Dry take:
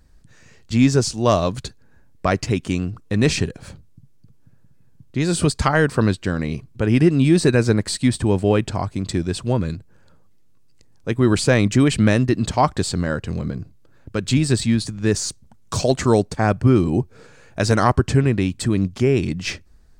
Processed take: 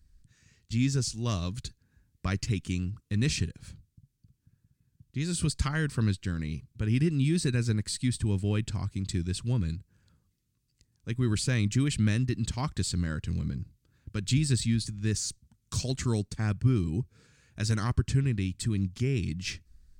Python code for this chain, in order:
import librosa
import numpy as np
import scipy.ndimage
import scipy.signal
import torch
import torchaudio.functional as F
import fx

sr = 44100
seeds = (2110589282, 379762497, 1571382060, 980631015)

p1 = fx.tone_stack(x, sr, knobs='6-0-2')
p2 = fx.rider(p1, sr, range_db=10, speed_s=2.0)
y = p1 + (p2 * librosa.db_to_amplitude(2.5))